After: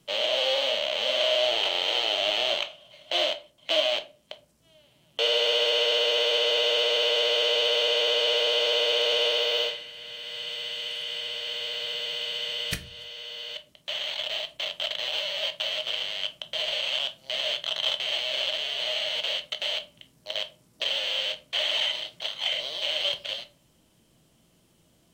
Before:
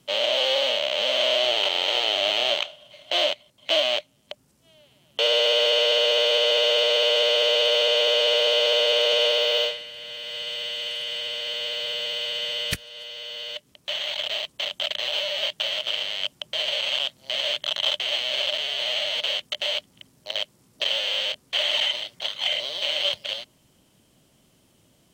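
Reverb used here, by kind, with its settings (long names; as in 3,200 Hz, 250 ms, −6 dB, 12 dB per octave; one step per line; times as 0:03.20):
rectangular room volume 210 cubic metres, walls furnished, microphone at 0.7 metres
level −3.5 dB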